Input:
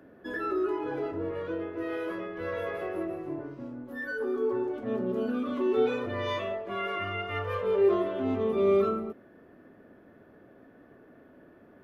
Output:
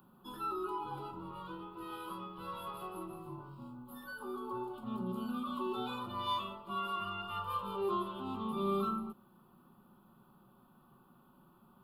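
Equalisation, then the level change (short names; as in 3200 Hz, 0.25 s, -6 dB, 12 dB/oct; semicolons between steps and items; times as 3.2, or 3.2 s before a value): high shelf 3700 Hz +11.5 dB; fixed phaser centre 430 Hz, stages 8; fixed phaser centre 1700 Hz, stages 6; +1.0 dB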